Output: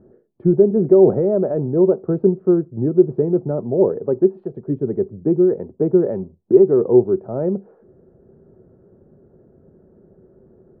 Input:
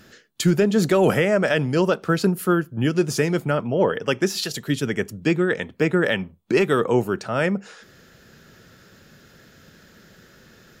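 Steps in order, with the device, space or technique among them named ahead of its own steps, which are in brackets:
under water (low-pass filter 750 Hz 24 dB per octave; parametric band 380 Hz +10.5 dB 0.27 octaves)

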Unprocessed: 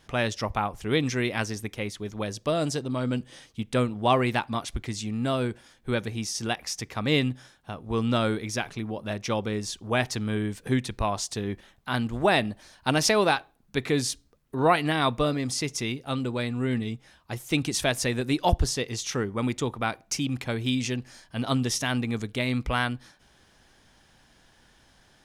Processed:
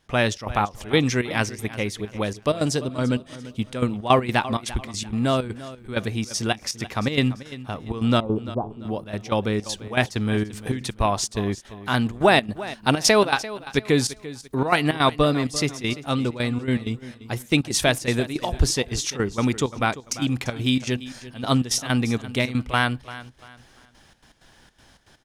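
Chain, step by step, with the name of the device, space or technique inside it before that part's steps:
0:08.20–0:08.85: Butterworth low-pass 1,100 Hz 72 dB per octave
trance gate with a delay (gate pattern ".xxx.xx.x" 161 BPM −12 dB; repeating echo 343 ms, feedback 32%, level −16 dB)
level +5.5 dB

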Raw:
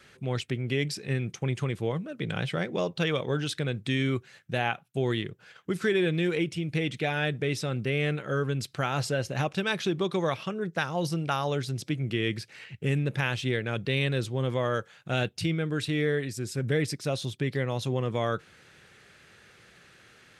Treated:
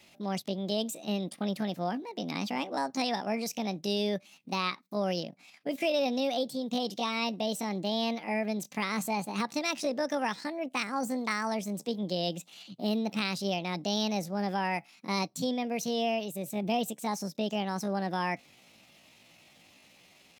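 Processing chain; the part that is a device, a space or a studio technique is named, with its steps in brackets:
chipmunk voice (pitch shifter +7.5 semitones)
level −3 dB

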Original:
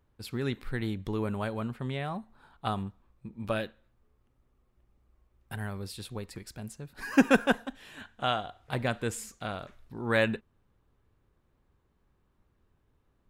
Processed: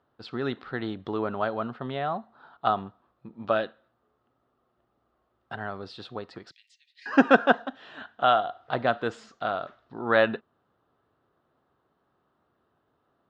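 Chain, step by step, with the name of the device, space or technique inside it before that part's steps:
0:06.51–0:07.06: Chebyshev high-pass filter 1,900 Hz, order 8
kitchen radio (loudspeaker in its box 190–4,300 Hz, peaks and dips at 200 Hz −4 dB, 690 Hz +8 dB, 1,300 Hz +7 dB, 2,300 Hz −9 dB)
level +3.5 dB

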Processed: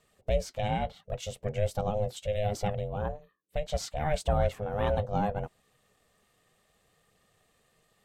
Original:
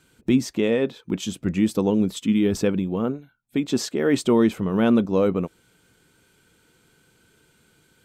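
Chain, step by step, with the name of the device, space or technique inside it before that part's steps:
alien voice (ring modulation 310 Hz; flanger 0.7 Hz, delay 0.2 ms, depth 6.6 ms, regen −66%)
level −1.5 dB

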